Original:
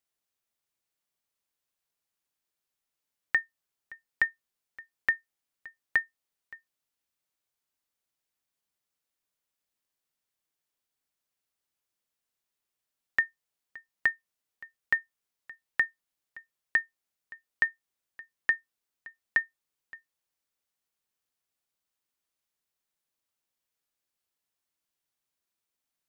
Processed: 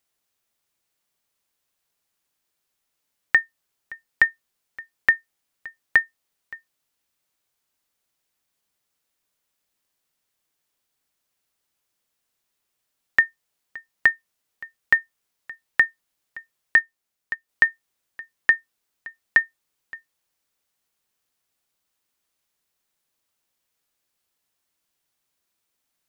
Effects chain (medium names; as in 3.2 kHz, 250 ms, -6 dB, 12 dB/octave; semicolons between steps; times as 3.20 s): 16.77–17.49 s: transient shaper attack +10 dB, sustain -4 dB; trim +8.5 dB